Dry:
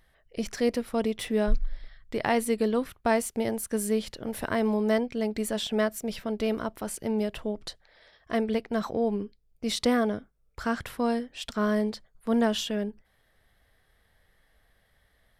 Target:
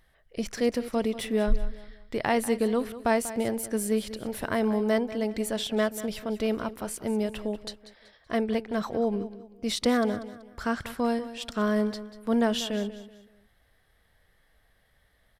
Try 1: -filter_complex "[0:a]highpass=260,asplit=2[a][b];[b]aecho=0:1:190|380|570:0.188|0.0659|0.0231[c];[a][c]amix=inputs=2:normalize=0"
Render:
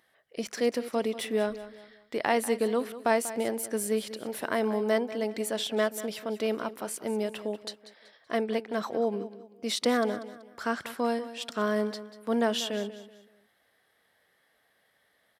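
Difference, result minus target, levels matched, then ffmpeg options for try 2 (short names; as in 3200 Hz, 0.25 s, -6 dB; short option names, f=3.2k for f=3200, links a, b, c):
250 Hz band -3.0 dB
-filter_complex "[0:a]asplit=2[a][b];[b]aecho=0:1:190|380|570:0.188|0.0659|0.0231[c];[a][c]amix=inputs=2:normalize=0"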